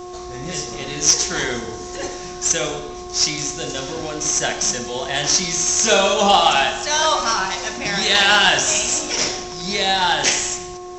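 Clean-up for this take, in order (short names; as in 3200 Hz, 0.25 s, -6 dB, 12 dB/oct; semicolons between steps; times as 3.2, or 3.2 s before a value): de-hum 360 Hz, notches 3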